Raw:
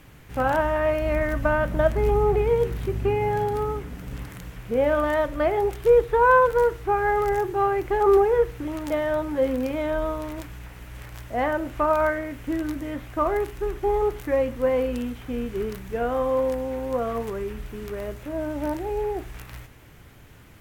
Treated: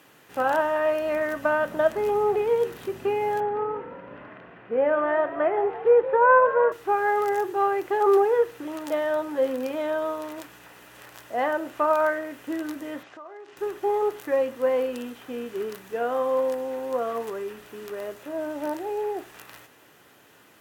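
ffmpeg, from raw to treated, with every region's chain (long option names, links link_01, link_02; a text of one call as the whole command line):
ffmpeg -i in.wav -filter_complex "[0:a]asettb=1/sr,asplit=3[link_01][link_02][link_03];[link_01]atrim=end=3.404[link_04];[link_02]atrim=start=3.4:end=6.72,asetpts=PTS-STARTPTS,afade=type=in:duration=0.004:curve=qsin,afade=type=out:start_time=3.316:duration=0.004:curve=qsin,lowpass=frequency=2400:width=0.5412,lowpass=frequency=2400:width=1.3066,asplit=7[link_05][link_06][link_07][link_08][link_09][link_10][link_11];[link_06]adelay=169,afreqshift=50,volume=-14dB[link_12];[link_07]adelay=338,afreqshift=100,volume=-18.4dB[link_13];[link_08]adelay=507,afreqshift=150,volume=-22.9dB[link_14];[link_09]adelay=676,afreqshift=200,volume=-27.3dB[link_15];[link_10]adelay=845,afreqshift=250,volume=-31.7dB[link_16];[link_11]adelay=1014,afreqshift=300,volume=-36.2dB[link_17];[link_05][link_12][link_13][link_14][link_15][link_16][link_17]amix=inputs=7:normalize=0,atrim=end_sample=146412[link_18];[link_03]atrim=start=6.716[link_19];[link_04][link_18]acrossfade=duration=0.004:curve1=hsin:curve2=qsin[link_20];[link_20][link_19]acrossfade=duration=0.004:curve1=qsin:curve2=hsin,asettb=1/sr,asplit=3[link_21][link_22][link_23];[link_21]atrim=end=13.034[link_24];[link_22]atrim=start=13.03:end=13.57,asetpts=PTS-STARTPTS,afade=type=in:duration=0.004:curve=qsin,afade=type=out:start_time=0.536:duration=0.004:curve=qsin,acompressor=threshold=-36dB:ratio=16:attack=3.2:release=140:knee=1:detection=peak,lowpass=frequency=6500:width=0.5412,lowpass=frequency=6500:width=1.3066,lowshelf=frequency=160:gain=-11[link_25];[link_23]atrim=start=13.566[link_26];[link_24][link_25]acrossfade=duration=0.004:curve1=hsin:curve2=qsin[link_27];[link_27][link_26]acrossfade=duration=0.004:curve1=qsin:curve2=hsin,highpass=330,bandreject=frequency=2200:width=10" out.wav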